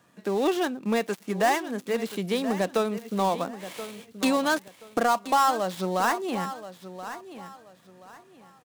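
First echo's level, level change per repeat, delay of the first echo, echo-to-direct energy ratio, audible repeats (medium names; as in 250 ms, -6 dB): -13.0 dB, -11.5 dB, 1028 ms, -12.5 dB, 2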